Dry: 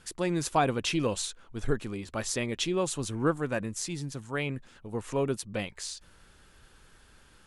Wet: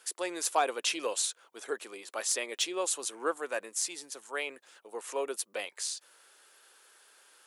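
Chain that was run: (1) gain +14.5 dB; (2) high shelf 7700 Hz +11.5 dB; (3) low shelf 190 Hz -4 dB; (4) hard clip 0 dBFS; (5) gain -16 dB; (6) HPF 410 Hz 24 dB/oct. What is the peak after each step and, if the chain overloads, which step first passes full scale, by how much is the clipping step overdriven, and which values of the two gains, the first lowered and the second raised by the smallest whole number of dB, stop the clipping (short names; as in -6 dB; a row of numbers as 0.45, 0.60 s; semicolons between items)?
+1.5, +4.5, +4.5, 0.0, -16.0, -13.0 dBFS; step 1, 4.5 dB; step 1 +9.5 dB, step 5 -11 dB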